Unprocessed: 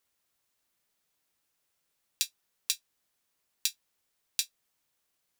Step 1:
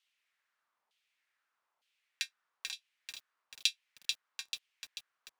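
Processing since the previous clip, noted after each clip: LFO band-pass saw down 1.1 Hz 870–3200 Hz; bit-crushed delay 439 ms, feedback 55%, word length 10-bit, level -4 dB; trim +8 dB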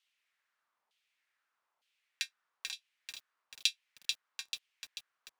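no audible change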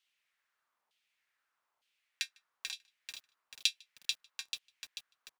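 echo from a far wall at 26 m, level -28 dB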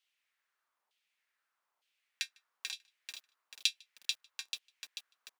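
high-pass 280 Hz; gain riding within 5 dB 2 s; trim -3 dB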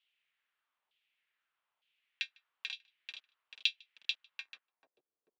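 low-pass sweep 3.1 kHz -> 400 Hz, 4.35–5.01 s; trim -4 dB

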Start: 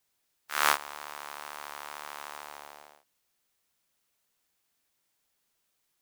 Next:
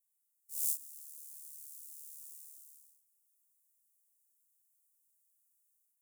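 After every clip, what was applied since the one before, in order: inverse Chebyshev high-pass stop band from 1.5 kHz, stop band 80 dB; level rider gain up to 5.5 dB; trim -2 dB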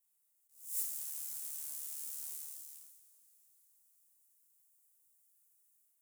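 waveshaping leveller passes 1; two-slope reverb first 0.46 s, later 4.7 s, from -22 dB, DRR 2 dB; attacks held to a fixed rise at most 130 dB/s; trim +4 dB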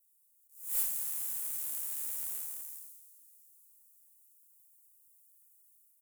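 differentiator; speakerphone echo 220 ms, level -8 dB; Chebyshev shaper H 5 -21 dB, 6 -24 dB, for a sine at -18.5 dBFS

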